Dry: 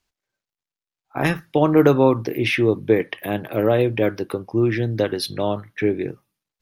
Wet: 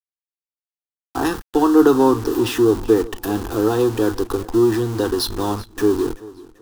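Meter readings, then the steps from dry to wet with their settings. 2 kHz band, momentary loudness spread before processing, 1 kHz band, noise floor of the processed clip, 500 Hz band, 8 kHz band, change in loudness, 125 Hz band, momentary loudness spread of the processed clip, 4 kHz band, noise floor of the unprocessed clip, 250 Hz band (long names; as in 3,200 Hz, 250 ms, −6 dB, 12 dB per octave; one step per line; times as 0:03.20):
−4.5 dB, 11 LU, +3.0 dB, below −85 dBFS, +1.5 dB, can't be measured, +2.0 dB, −3.5 dB, 11 LU, +2.0 dB, below −85 dBFS, +4.0 dB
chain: in parallel at −7.5 dB: comparator with hysteresis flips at −32.5 dBFS
on the sum: phaser with its sweep stopped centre 590 Hz, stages 6
centre clipping without the shift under −38.5 dBFS
feedback echo with a swinging delay time 385 ms, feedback 39%, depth 55 cents, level −20 dB
level +3 dB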